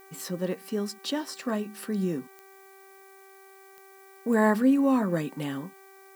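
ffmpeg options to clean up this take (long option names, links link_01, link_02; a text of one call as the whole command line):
ffmpeg -i in.wav -af "adeclick=threshold=4,bandreject=frequency=387.4:width_type=h:width=4,bandreject=frequency=774.8:width_type=h:width=4,bandreject=frequency=1162.2:width_type=h:width=4,bandreject=frequency=1549.6:width_type=h:width=4,bandreject=frequency=1937:width_type=h:width=4,bandreject=frequency=2324.4:width_type=h:width=4,agate=range=-21dB:threshold=-44dB" out.wav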